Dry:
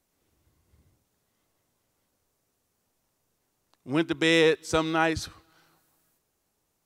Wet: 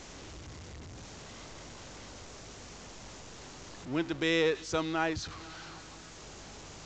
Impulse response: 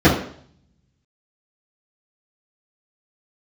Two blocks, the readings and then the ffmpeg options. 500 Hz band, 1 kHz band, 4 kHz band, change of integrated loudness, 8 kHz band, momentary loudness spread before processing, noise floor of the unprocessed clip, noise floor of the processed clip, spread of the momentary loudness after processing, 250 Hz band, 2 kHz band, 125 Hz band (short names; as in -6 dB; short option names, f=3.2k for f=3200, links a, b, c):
-6.5 dB, -6.0 dB, -6.0 dB, -8.0 dB, -2.0 dB, 11 LU, -77 dBFS, -49 dBFS, 18 LU, -6.0 dB, -6.5 dB, -4.5 dB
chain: -af "aeval=exprs='val(0)+0.5*0.0237*sgn(val(0))':c=same,aeval=exprs='val(0)+0.00355*(sin(2*PI*50*n/s)+sin(2*PI*2*50*n/s)/2+sin(2*PI*3*50*n/s)/3+sin(2*PI*4*50*n/s)/4+sin(2*PI*5*50*n/s)/5)':c=same,volume=-7.5dB" -ar 16000 -c:a pcm_mulaw